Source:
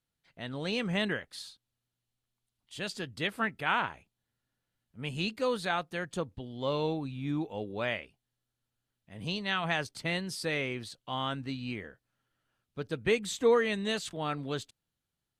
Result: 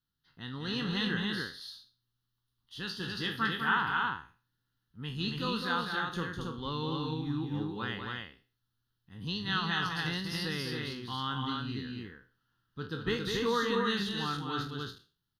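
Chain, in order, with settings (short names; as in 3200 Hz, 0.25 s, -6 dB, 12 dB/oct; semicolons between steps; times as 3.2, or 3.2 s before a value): spectral trails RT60 0.36 s; fixed phaser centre 2300 Hz, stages 6; loudspeakers at several distances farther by 69 m -6 dB, 95 m -3 dB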